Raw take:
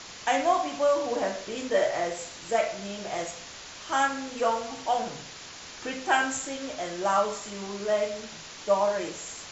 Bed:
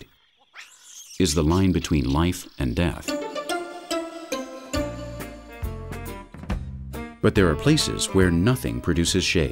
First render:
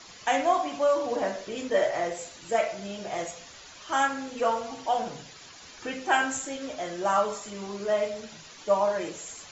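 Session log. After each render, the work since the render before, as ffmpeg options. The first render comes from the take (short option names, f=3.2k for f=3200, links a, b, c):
-af "afftdn=nr=9:nf=-44"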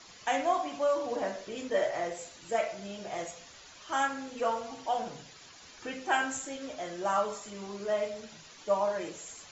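-af "volume=-4.5dB"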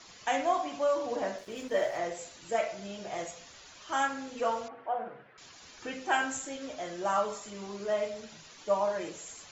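-filter_complex "[0:a]asettb=1/sr,asplit=3[a][b][c];[a]atrim=end=1.384[d];[b]atrim=start=1.38:end=1.98,asetpts=PTS-STARTPTS,afade=t=in:d=0.004:c=qsin,afade=t=out:st=0.596:d=0.004:c=qsin,aeval=exprs='sgn(val(0))*max(abs(val(0))-0.00224,0)':c=same[e];[c]atrim=start=1.976[f];[d][e]acrossfade=d=0.004:c1=hsin:c2=qsin[g];[g][f]acrossfade=d=0.004:c1=qsin:c2=hsin,asettb=1/sr,asplit=3[h][i][j];[h]atrim=end=4.684[k];[i]atrim=start=4.68:end=5.38,asetpts=PTS-STARTPTS,afade=t=in:d=0.004:c=qsin,afade=t=out:st=0.696:d=0.004:c=qsin,highpass=150,equalizer=f=160:t=q:w=4:g=-10,equalizer=f=270:t=q:w=4:g=-10,equalizer=f=890:t=q:w=4:g=-6,equalizer=f=1.4k:t=q:w=4:g=4,lowpass=f=2k:w=0.5412,lowpass=f=2k:w=1.3066[l];[j]atrim=start=5.376[m];[k][l]acrossfade=d=0.004:c1=hsin:c2=qsin[n];[n][m]acrossfade=d=0.004:c1=qsin:c2=hsin"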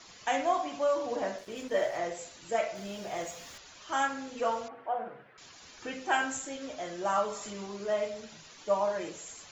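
-filter_complex "[0:a]asettb=1/sr,asplit=3[a][b][c];[a]atrim=end=2.754[d];[b]atrim=start=2.75:end=3.58,asetpts=PTS-STARTPTS,afade=t=in:d=0.004:c=qsin,afade=t=out:st=0.826:d=0.004:c=qsin,aeval=exprs='val(0)+0.5*0.00355*sgn(val(0))':c=same[e];[c]atrim=start=3.576[f];[d][e]acrossfade=d=0.004:c1=hsin:c2=qsin[g];[g][f]acrossfade=d=0.004:c1=qsin:c2=hsin,asettb=1/sr,asplit=3[h][i][j];[h]atrim=end=7.184[k];[i]atrim=start=7.18:end=7.66,asetpts=PTS-STARTPTS,afade=t=in:d=0.004:c=qsin,afade=t=out:st=0.476:d=0.004:c=qsin,acompressor=mode=upward:threshold=-34dB:ratio=2.5:attack=3.2:release=140:knee=2.83:detection=peak[l];[j]atrim=start=7.656[m];[k][l]acrossfade=d=0.004:c1=hsin:c2=qsin[n];[n][m]acrossfade=d=0.004:c1=qsin:c2=hsin"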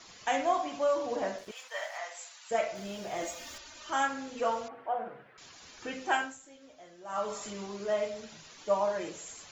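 -filter_complex "[0:a]asettb=1/sr,asplit=3[a][b][c];[a]atrim=end=1.514[d];[b]atrim=start=1.51:end=2.51,asetpts=PTS-STARTPTS,afade=t=in:d=0.004:c=qsin,afade=t=out:st=0.996:d=0.004:c=qsin,highpass=f=830:w=0.5412,highpass=f=830:w=1.3066[e];[c]atrim=start=2.506[f];[d][e]acrossfade=d=0.004:c1=hsin:c2=qsin[g];[g][f]acrossfade=d=0.004:c1=qsin:c2=hsin,asettb=1/sr,asplit=3[h][i][j];[h]atrim=end=3.224[k];[i]atrim=start=3.22:end=3.9,asetpts=PTS-STARTPTS,afade=t=in:d=0.004:c=qsin,afade=t=out:st=0.676:d=0.004:c=qsin,aecho=1:1:3.3:0.85,atrim=end_sample=29988[l];[j]atrim=start=3.896[m];[k][l]acrossfade=d=0.004:c1=hsin:c2=qsin[n];[n][m]acrossfade=d=0.004:c1=qsin:c2=hsin,asplit=3[o][p][q];[o]atrim=end=6.36,asetpts=PTS-STARTPTS,afade=t=out:st=6.12:d=0.24:silence=0.188365[r];[p]atrim=start=6.36:end=7.07,asetpts=PTS-STARTPTS,volume=-14.5dB[s];[q]atrim=start=7.07,asetpts=PTS-STARTPTS,afade=t=in:d=0.24:silence=0.188365[t];[r][s][t]concat=n=3:v=0:a=1"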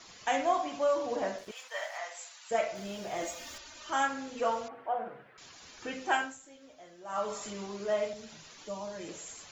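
-filter_complex "[0:a]asettb=1/sr,asplit=3[a][b][c];[a]atrim=end=8.134[d];[b]atrim=start=8.13:end=9.09,asetpts=PTS-STARTPTS,afade=t=in:d=0.004:c=qsin,afade=t=out:st=0.956:d=0.004:c=qsin,acrossover=split=300|3000[e][f][g];[f]acompressor=threshold=-50dB:ratio=2:attack=3.2:release=140:knee=2.83:detection=peak[h];[e][h][g]amix=inputs=3:normalize=0[i];[c]atrim=start=9.086[j];[d][i]acrossfade=d=0.004:c1=hsin:c2=qsin[k];[k][j]acrossfade=d=0.004:c1=qsin:c2=hsin"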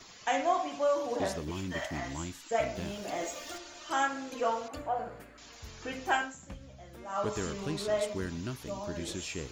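-filter_complex "[1:a]volume=-18dB[a];[0:a][a]amix=inputs=2:normalize=0"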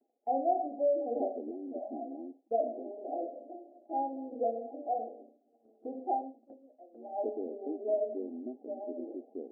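-af "afftfilt=real='re*between(b*sr/4096,220,820)':imag='im*between(b*sr/4096,220,820)':win_size=4096:overlap=0.75,agate=range=-33dB:threshold=-50dB:ratio=3:detection=peak"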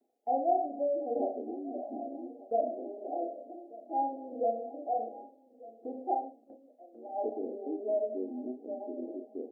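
-filter_complex "[0:a]asplit=2[a][b];[b]adelay=32,volume=-6dB[c];[a][c]amix=inputs=2:normalize=0,aecho=1:1:1192:0.1"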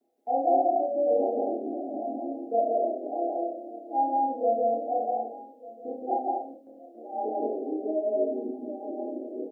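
-filter_complex "[0:a]asplit=2[a][b];[b]adelay=26,volume=-5.5dB[c];[a][c]amix=inputs=2:normalize=0,aecho=1:1:32.07|169.1|239.1:0.501|1|0.631"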